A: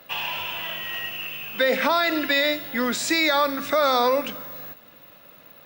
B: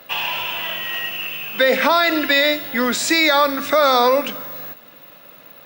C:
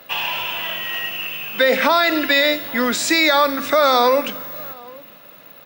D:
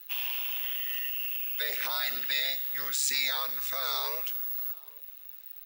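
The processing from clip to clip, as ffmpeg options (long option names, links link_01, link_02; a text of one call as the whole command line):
ffmpeg -i in.wav -af "highpass=frequency=140:poles=1,volume=5.5dB" out.wav
ffmpeg -i in.wav -filter_complex "[0:a]asplit=2[link_01][link_02];[link_02]adelay=816.3,volume=-23dB,highshelf=frequency=4000:gain=-18.4[link_03];[link_01][link_03]amix=inputs=2:normalize=0" out.wav
ffmpeg -i in.wav -af "aderivative,aeval=exprs='val(0)*sin(2*PI*69*n/s)':channel_layout=same,volume=-2.5dB" out.wav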